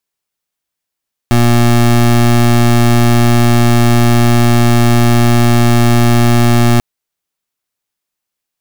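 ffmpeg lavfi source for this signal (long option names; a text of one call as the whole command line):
ffmpeg -f lavfi -i "aevalsrc='0.398*(2*lt(mod(119*t,1),0.24)-1)':duration=5.49:sample_rate=44100" out.wav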